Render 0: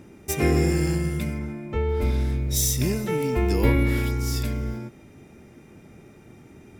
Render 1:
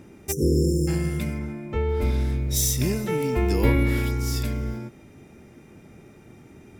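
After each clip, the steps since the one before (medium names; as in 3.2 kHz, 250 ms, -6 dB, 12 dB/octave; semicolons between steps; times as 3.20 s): spectral selection erased 0.32–0.88 s, 540–5100 Hz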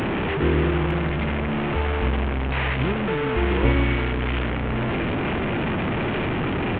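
one-bit delta coder 16 kbps, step -18 dBFS; delay 906 ms -15.5 dB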